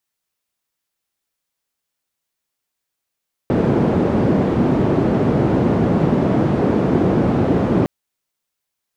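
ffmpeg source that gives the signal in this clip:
-f lavfi -i "anoisesrc=c=white:d=4.36:r=44100:seed=1,highpass=f=120,lowpass=f=310,volume=8.9dB"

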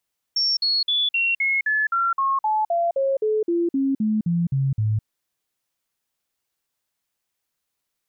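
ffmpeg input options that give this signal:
-f lavfi -i "aevalsrc='0.126*clip(min(mod(t,0.26),0.21-mod(t,0.26))/0.005,0,1)*sin(2*PI*5470*pow(2,-floor(t/0.26)/3)*mod(t,0.26))':d=4.68:s=44100"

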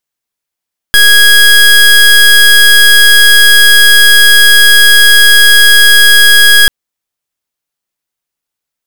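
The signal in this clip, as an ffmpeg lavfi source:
-f lavfi -i "aevalsrc='0.708*(2*lt(mod(1650*t,1),0.24)-1)':d=5.74:s=44100"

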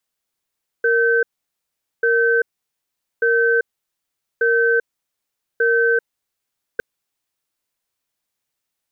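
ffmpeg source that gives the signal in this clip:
-f lavfi -i "aevalsrc='0.158*(sin(2*PI*464*t)+sin(2*PI*1540*t))*clip(min(mod(t,1.19),0.39-mod(t,1.19))/0.005,0,1)':d=5.96:s=44100"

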